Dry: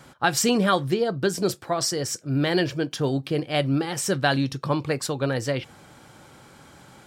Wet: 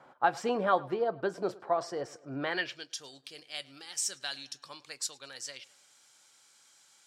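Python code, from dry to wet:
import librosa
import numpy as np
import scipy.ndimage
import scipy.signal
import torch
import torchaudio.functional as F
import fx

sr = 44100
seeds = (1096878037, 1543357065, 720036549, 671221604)

y = fx.echo_tape(x, sr, ms=106, feedback_pct=55, wet_db=-21.0, lp_hz=4800.0, drive_db=7.0, wow_cents=20)
y = fx.filter_sweep_bandpass(y, sr, from_hz=790.0, to_hz=6500.0, start_s=2.38, end_s=2.91, q=1.3)
y = F.gain(torch.from_numpy(y), -1.5).numpy()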